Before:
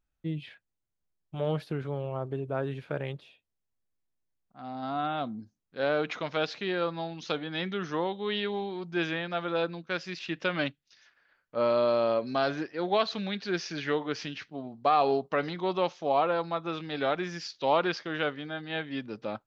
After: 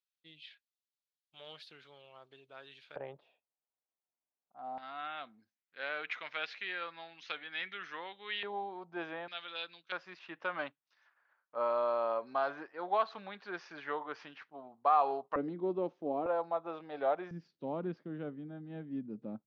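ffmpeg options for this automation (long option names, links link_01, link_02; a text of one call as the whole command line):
ffmpeg -i in.wav -af "asetnsamples=nb_out_samples=441:pad=0,asendcmd='2.96 bandpass f 770;4.78 bandpass f 2100;8.43 bandpass f 820;9.28 bandpass f 3200;9.92 bandpass f 1000;15.36 bandpass f 300;16.26 bandpass f 710;17.31 bandpass f 210',bandpass=frequency=3900:width_type=q:width=1.9:csg=0" out.wav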